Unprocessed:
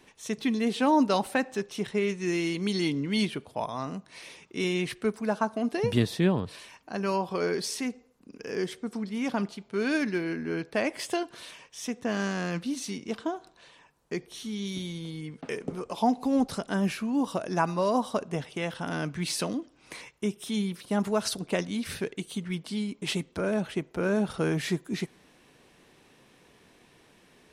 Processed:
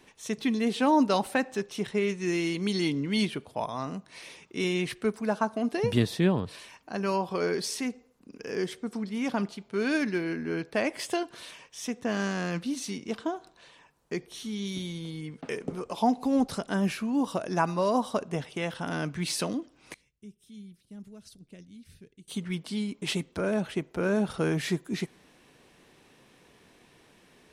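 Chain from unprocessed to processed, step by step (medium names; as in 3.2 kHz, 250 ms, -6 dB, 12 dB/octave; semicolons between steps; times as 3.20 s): 19.94–22.28 s: amplifier tone stack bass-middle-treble 10-0-1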